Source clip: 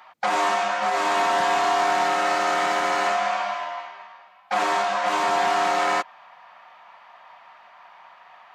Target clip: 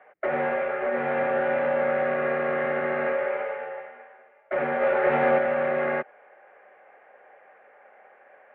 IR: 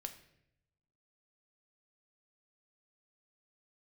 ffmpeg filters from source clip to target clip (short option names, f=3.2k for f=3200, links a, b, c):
-filter_complex "[0:a]highpass=f=360:t=q:w=0.5412,highpass=f=360:t=q:w=1.307,lowpass=f=2.3k:t=q:w=0.5176,lowpass=f=2.3k:t=q:w=0.7071,lowpass=f=2.3k:t=q:w=1.932,afreqshift=-160,asplit=3[a][b][c];[a]afade=t=out:st=4.81:d=0.02[d];[b]acontrast=33,afade=t=in:st=4.81:d=0.02,afade=t=out:st=5.37:d=0.02[e];[c]afade=t=in:st=5.37:d=0.02[f];[d][e][f]amix=inputs=3:normalize=0,equalizer=f=1k:t=o:w=0.56:g=-14.5"